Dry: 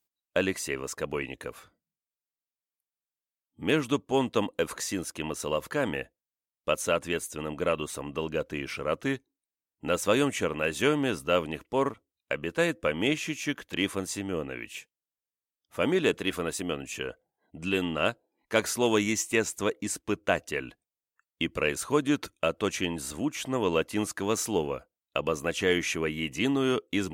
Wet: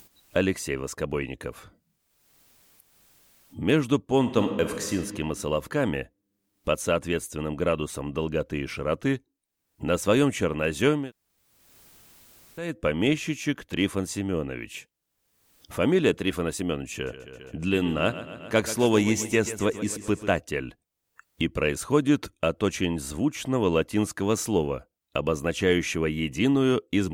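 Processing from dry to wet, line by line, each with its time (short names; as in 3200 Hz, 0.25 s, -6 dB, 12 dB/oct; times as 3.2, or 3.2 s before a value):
4.19–4.96 reverb throw, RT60 1.5 s, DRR 6 dB
11–12.69 room tone, crossfade 0.24 s
16.93–20.31 feedback echo 0.134 s, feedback 59%, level -13.5 dB
whole clip: low shelf 180 Hz +4 dB; upward compressor, threshold -33 dBFS; low shelf 410 Hz +5.5 dB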